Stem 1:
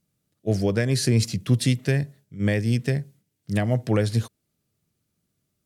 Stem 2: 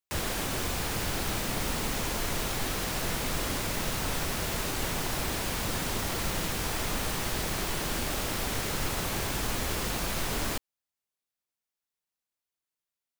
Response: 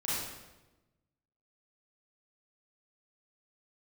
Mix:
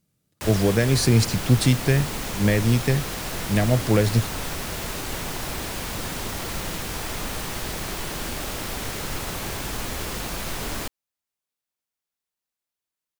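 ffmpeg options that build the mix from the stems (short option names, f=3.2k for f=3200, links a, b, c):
-filter_complex "[0:a]volume=2.5dB[a];[1:a]adelay=300,volume=1dB[b];[a][b]amix=inputs=2:normalize=0"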